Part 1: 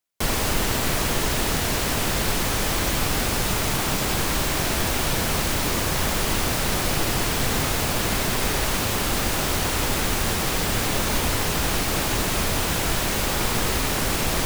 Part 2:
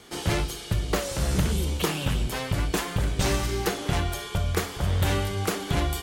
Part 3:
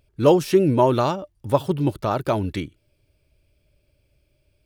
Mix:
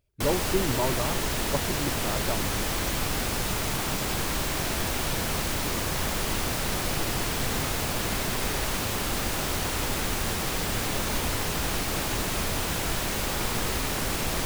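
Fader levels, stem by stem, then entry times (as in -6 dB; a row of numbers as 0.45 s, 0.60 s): -5.0 dB, mute, -11.5 dB; 0.00 s, mute, 0.00 s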